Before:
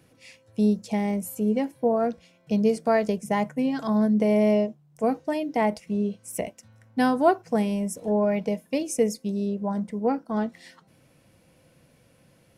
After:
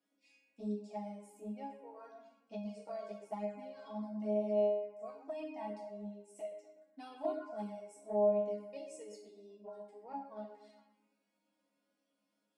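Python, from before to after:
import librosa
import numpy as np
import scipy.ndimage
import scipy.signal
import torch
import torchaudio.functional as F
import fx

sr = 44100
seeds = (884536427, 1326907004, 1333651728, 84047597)

p1 = fx.cabinet(x, sr, low_hz=290.0, low_slope=12, high_hz=8500.0, hz=(480.0, 700.0, 1900.0, 3000.0, 6100.0), db=(-5, 5, -7, -3, -6))
p2 = fx.resonator_bank(p1, sr, root=56, chord='sus4', decay_s=0.48)
p3 = p2 + fx.echo_bbd(p2, sr, ms=122, stages=2048, feedback_pct=46, wet_db=-7, dry=0)
p4 = fx.env_flanger(p3, sr, rest_ms=4.2, full_db=-32.5)
y = p4 * 10.0 ** (3.5 / 20.0)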